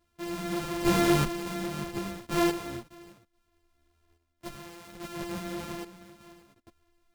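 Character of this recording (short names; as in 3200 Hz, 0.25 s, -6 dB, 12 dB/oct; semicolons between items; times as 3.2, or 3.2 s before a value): a buzz of ramps at a fixed pitch in blocks of 128 samples; random-step tremolo 1.2 Hz, depth 85%; a shimmering, thickened sound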